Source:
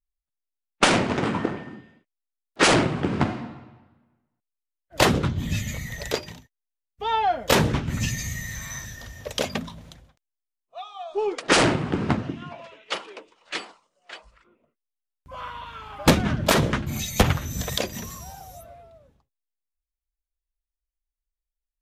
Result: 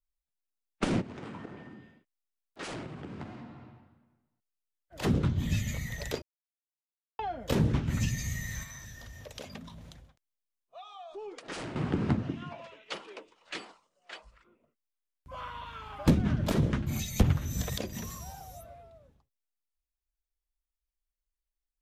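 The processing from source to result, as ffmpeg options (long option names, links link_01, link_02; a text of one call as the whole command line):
ffmpeg -i in.wav -filter_complex "[0:a]asplit=3[link_01][link_02][link_03];[link_01]afade=type=out:start_time=1:duration=0.02[link_04];[link_02]acompressor=threshold=-42dB:ratio=2.5:attack=3.2:release=140:knee=1:detection=peak,afade=type=in:start_time=1:duration=0.02,afade=type=out:start_time=5.03:duration=0.02[link_05];[link_03]afade=type=in:start_time=5.03:duration=0.02[link_06];[link_04][link_05][link_06]amix=inputs=3:normalize=0,asettb=1/sr,asplit=3[link_07][link_08][link_09];[link_07]atrim=end=8.634[link_10];[link_08]atrim=start=8.63:end=11.76,asetpts=PTS-STARTPTS,afade=type=in:duration=0.004:curve=qsin,afade=type=out:start_time=3.126:duration=0.004:curve=qsin,acompressor=threshold=-41dB:ratio=2.5:attack=3.2:release=140:knee=1:detection=peak[link_11];[link_09]atrim=start=11.756[link_12];[link_10][link_11]acrossfade=duration=0.004:curve1=hsin:curve2=qsin[link_13];[link_13][link_12]acrossfade=duration=0.004:curve1=qsin:curve2=hsin,asplit=3[link_14][link_15][link_16];[link_14]atrim=end=6.22,asetpts=PTS-STARTPTS,afade=type=out:start_time=6.216:duration=0.004:curve=hsin[link_17];[link_15]atrim=start=6.22:end=7.19,asetpts=PTS-STARTPTS,volume=0[link_18];[link_16]atrim=start=7.19,asetpts=PTS-STARTPTS,afade=type=in:duration=0.004:curve=hsin[link_19];[link_17][link_18][link_19]concat=n=3:v=0:a=1,acrossover=split=390[link_20][link_21];[link_21]acompressor=threshold=-32dB:ratio=4[link_22];[link_20][link_22]amix=inputs=2:normalize=0,lowshelf=frequency=170:gain=3,volume=-4.5dB" out.wav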